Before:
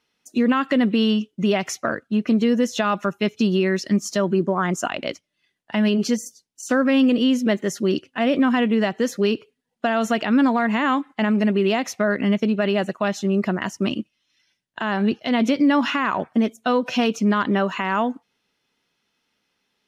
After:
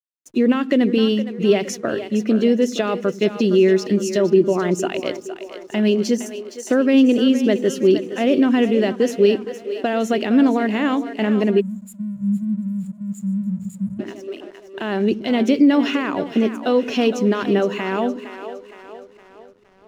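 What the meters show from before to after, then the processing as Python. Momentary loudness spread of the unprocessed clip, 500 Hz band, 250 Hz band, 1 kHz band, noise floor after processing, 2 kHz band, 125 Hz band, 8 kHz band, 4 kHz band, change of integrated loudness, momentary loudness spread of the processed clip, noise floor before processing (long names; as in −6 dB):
8 LU, +5.0 dB, +2.0 dB, −3.5 dB, −46 dBFS, −2.5 dB, +0.5 dB, −0.5 dB, −0.5 dB, +2.0 dB, 14 LU, −75 dBFS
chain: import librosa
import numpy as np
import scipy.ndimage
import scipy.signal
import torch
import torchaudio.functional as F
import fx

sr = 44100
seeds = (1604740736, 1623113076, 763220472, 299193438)

y = fx.curve_eq(x, sr, hz=(220.0, 380.0, 1100.0, 2400.0), db=(0, 8, -7, 0))
y = fx.echo_split(y, sr, split_hz=330.0, low_ms=88, high_ms=464, feedback_pct=52, wet_db=-11.0)
y = fx.spec_erase(y, sr, start_s=11.6, length_s=2.4, low_hz=220.0, high_hz=6800.0)
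y = fx.backlash(y, sr, play_db=-46.0)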